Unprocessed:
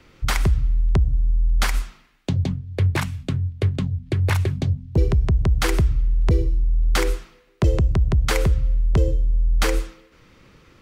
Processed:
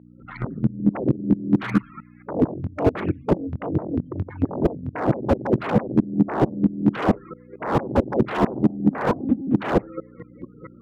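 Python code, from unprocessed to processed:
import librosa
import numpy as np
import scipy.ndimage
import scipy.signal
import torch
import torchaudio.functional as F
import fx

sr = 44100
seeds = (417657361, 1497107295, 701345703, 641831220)

y = fx.fade_in_head(x, sr, length_s=0.96)
y = fx.over_compress(y, sr, threshold_db=-25.0, ratio=-0.5, at=(4.04, 4.65))
y = fx.spec_topn(y, sr, count=16)
y = fx.fold_sine(y, sr, drive_db=19, ceiling_db=-7.5)
y = fx.volume_shaper(y, sr, bpm=135, per_beat=2, depth_db=-23, release_ms=193.0, shape='slow start')
y = fx.add_hum(y, sr, base_hz=60, snr_db=21)
y = fx.lpc_monotone(y, sr, seeds[0], pitch_hz=270.0, order=16, at=(8.91, 9.54))
y = fx.bandpass_edges(y, sr, low_hz=200.0, high_hz=2700.0)
y = fx.slew_limit(y, sr, full_power_hz=78.0)
y = y * librosa.db_to_amplitude(2.0)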